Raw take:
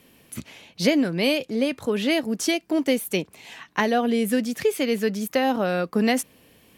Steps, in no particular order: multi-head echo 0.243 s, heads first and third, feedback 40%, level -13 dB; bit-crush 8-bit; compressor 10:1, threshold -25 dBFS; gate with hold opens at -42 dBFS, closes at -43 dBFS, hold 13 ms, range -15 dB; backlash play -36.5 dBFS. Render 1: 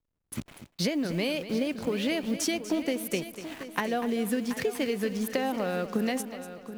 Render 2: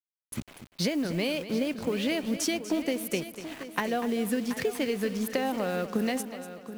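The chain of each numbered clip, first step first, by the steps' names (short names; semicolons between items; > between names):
bit-crush > backlash > compressor > multi-head echo > gate with hold; gate with hold > backlash > compressor > bit-crush > multi-head echo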